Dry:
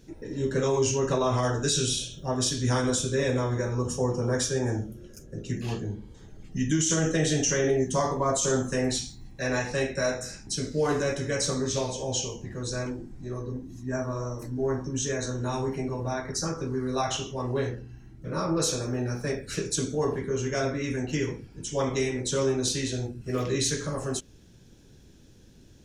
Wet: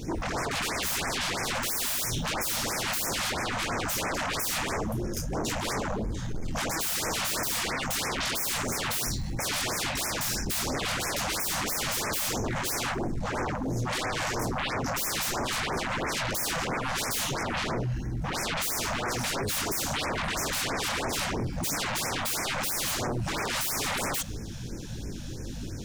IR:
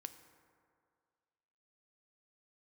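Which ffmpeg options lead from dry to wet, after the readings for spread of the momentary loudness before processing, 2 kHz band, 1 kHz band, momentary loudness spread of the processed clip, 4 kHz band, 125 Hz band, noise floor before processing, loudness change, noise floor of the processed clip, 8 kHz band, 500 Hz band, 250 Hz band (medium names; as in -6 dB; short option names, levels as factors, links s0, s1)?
10 LU, +5.0 dB, +3.0 dB, 4 LU, +3.5 dB, -5.0 dB, -53 dBFS, -0.5 dB, -36 dBFS, +0.5 dB, -7.5 dB, -5.0 dB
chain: -filter_complex "[0:a]acompressor=threshold=0.0355:ratio=5,flanger=delay=17.5:depth=7.5:speed=1.6,aeval=exprs='0.0708*sin(PI/2*10*val(0)/0.0708)':c=same,asplit=2[s0][s1];[1:a]atrim=start_sample=2205[s2];[s1][s2]afir=irnorm=-1:irlink=0,volume=0.501[s3];[s0][s3]amix=inputs=2:normalize=0,afftfilt=real='re*(1-between(b*sr/1024,330*pow(3700/330,0.5+0.5*sin(2*PI*3*pts/sr))/1.41,330*pow(3700/330,0.5+0.5*sin(2*PI*3*pts/sr))*1.41))':imag='im*(1-between(b*sr/1024,330*pow(3700/330,0.5+0.5*sin(2*PI*3*pts/sr))/1.41,330*pow(3700/330,0.5+0.5*sin(2*PI*3*pts/sr))*1.41))':win_size=1024:overlap=0.75,volume=0.531"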